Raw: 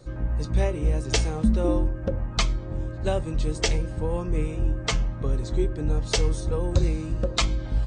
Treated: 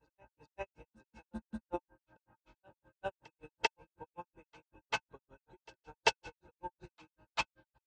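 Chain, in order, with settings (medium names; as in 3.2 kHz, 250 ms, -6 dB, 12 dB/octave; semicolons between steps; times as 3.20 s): high-pass 430 Hz 6 dB/octave; treble shelf 6.5 kHz -6.5 dB; granulator 101 ms, grains 5.3 per s, pitch spread up and down by 0 st; distance through air 56 m; small resonant body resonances 900/1500/2600 Hz, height 18 dB, ringing for 45 ms; reverse echo 392 ms -12 dB; upward expansion 2.5:1, over -35 dBFS; trim -1.5 dB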